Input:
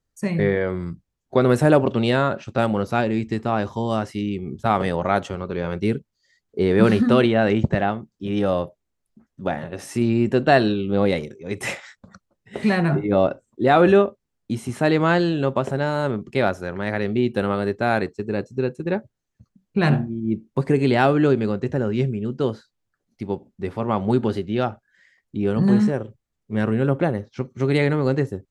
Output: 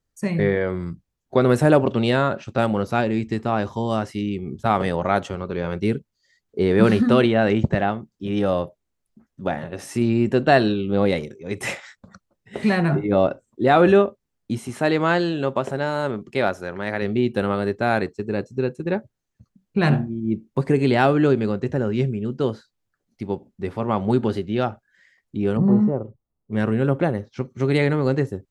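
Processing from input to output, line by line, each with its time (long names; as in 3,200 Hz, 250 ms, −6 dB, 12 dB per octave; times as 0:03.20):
0:14.58–0:17.02: low-shelf EQ 190 Hz −7 dB
0:25.57–0:26.53: Savitzky-Golay smoothing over 65 samples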